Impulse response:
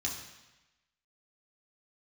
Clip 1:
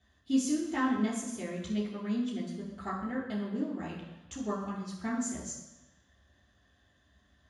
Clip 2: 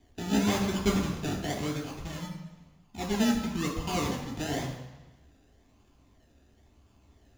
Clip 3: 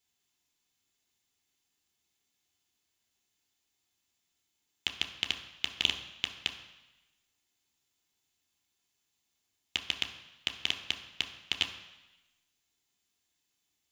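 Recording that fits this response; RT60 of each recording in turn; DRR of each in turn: 2; 1.0, 1.0, 1.0 s; -6.5, -2.5, 4.0 dB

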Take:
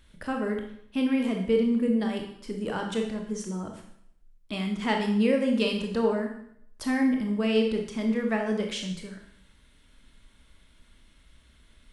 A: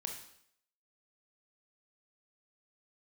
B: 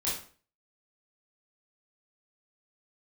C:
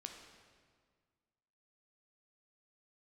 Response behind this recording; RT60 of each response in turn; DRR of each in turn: A; 0.65, 0.45, 1.8 s; 2.5, -8.0, 2.5 dB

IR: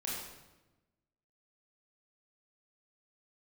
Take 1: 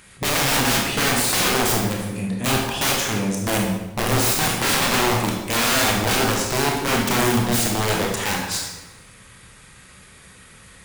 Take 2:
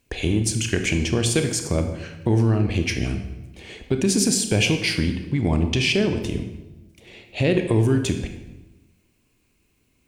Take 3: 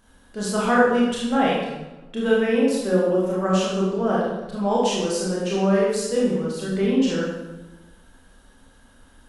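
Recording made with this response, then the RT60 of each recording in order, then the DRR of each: 3; 1.1, 1.1, 1.1 s; -1.5, 6.0, -6.0 dB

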